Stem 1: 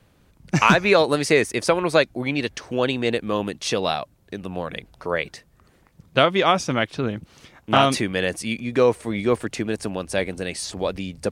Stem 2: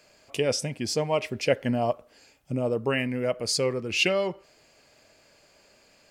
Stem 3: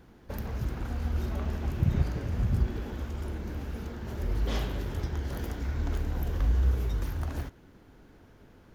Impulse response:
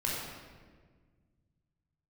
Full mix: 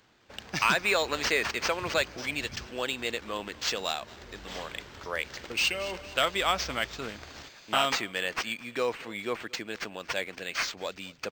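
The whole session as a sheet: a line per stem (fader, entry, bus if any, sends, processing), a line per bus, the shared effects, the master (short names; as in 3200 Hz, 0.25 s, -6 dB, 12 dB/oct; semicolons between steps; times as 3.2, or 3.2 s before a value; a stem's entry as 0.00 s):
-8.0 dB, 0.00 s, no send, echo send -24 dB, dry
+2.0 dB, 1.65 s, muted 2.56–5.5, no send, echo send -15 dB, compressor 8:1, threshold -30 dBFS, peak gain reduction 13.5 dB; auto swell 0.762 s
-6.0 dB, 0.00 s, no send, no echo send, dry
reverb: off
echo: feedback echo 0.228 s, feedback 44%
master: tilt +4 dB/oct; soft clip -10.5 dBFS, distortion -21 dB; decimation joined by straight lines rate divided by 4×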